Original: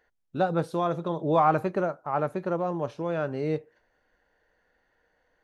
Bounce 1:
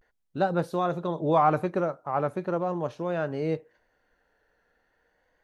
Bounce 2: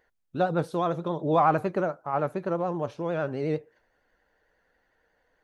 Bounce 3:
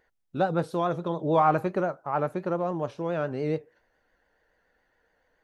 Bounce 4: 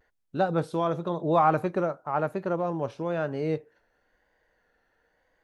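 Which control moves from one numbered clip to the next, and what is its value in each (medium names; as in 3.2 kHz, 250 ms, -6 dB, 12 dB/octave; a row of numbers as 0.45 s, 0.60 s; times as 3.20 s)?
vibrato, rate: 0.39 Hz, 11 Hz, 7.1 Hz, 0.98 Hz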